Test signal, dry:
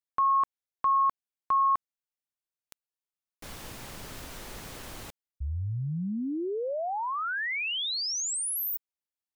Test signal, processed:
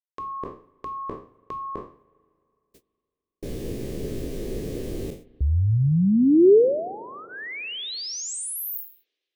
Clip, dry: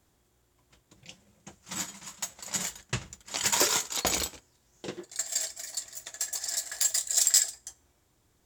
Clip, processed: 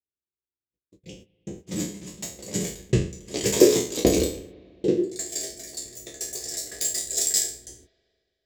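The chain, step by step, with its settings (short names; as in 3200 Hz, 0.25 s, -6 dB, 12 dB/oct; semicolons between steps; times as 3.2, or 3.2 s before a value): spectral trails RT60 0.42 s; gate -52 dBFS, range -50 dB; resonant low shelf 620 Hz +13.5 dB, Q 3; notch 1400 Hz, Q 5.2; spring tank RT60 2.5 s, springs 37/46 ms, chirp 70 ms, DRR 20 dB; gain -2.5 dB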